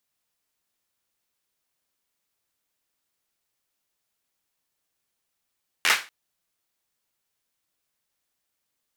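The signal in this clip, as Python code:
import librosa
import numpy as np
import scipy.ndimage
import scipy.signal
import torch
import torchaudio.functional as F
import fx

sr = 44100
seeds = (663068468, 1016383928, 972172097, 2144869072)

y = fx.drum_clap(sr, seeds[0], length_s=0.24, bursts=5, spacing_ms=12, hz=1900.0, decay_s=0.3)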